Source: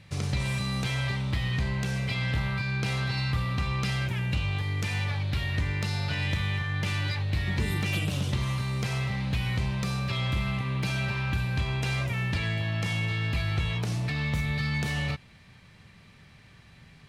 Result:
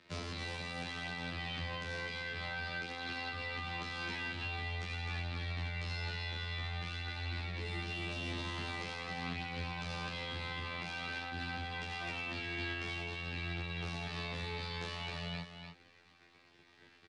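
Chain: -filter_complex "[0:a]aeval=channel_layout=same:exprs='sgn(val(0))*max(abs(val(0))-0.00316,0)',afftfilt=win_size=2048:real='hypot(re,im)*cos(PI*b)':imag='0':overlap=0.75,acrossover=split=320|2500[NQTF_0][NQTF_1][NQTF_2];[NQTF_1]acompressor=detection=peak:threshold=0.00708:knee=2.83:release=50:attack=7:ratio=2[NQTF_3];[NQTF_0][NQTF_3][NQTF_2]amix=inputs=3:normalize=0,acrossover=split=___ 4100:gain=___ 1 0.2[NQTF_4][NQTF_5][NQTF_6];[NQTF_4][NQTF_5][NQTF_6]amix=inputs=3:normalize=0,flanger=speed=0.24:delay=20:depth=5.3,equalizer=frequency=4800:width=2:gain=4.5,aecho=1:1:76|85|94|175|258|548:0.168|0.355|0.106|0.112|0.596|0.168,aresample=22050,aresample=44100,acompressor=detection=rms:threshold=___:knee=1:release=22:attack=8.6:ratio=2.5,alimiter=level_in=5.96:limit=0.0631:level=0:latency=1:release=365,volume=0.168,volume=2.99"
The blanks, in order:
170, 0.224, 0.00794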